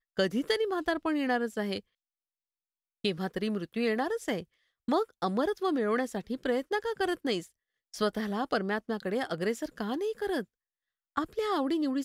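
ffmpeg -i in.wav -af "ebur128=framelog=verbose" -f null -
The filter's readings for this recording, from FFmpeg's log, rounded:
Integrated loudness:
  I:         -31.5 LUFS
  Threshold: -41.7 LUFS
Loudness range:
  LRA:         2.4 LU
  Threshold: -52.4 LUFS
  LRA low:   -33.6 LUFS
  LRA high:  -31.2 LUFS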